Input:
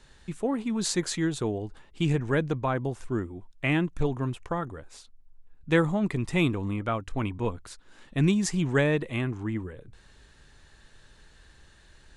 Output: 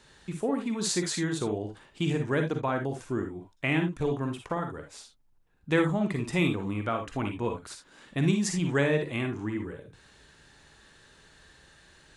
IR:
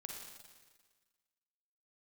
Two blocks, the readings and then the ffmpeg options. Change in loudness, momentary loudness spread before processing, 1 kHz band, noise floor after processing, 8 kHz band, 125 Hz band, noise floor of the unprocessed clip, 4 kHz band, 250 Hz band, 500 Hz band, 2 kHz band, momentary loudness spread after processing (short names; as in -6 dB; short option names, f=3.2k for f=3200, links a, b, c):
-1.5 dB, 11 LU, -0.5 dB, -62 dBFS, +0.5 dB, -2.5 dB, -56 dBFS, 0.0 dB, -1.5 dB, -0.5 dB, -0.5 dB, 13 LU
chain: -filter_complex "[0:a]highpass=f=130:p=1[a];[1:a]atrim=start_sample=2205,afade=t=out:st=0.13:d=0.01,atrim=end_sample=6174[b];[a][b]afir=irnorm=-1:irlink=0,asplit=2[c][d];[d]acompressor=threshold=-38dB:ratio=6,volume=-3dB[e];[c][e]amix=inputs=2:normalize=0,volume=2.5dB"